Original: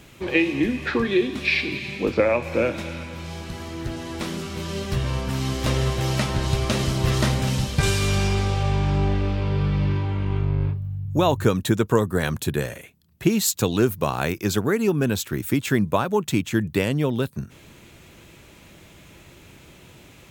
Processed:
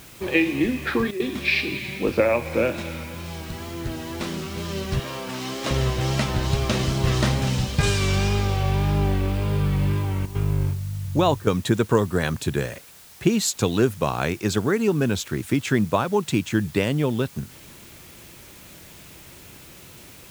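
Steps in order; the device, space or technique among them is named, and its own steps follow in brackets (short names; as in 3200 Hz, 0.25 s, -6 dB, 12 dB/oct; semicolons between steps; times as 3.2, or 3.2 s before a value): 4.99–5.71 HPF 270 Hz 12 dB/oct; worn cassette (LPF 8900 Hz; wow and flutter; level dips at 1.11/10.26/11.38/12.79, 88 ms -12 dB; white noise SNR 24 dB)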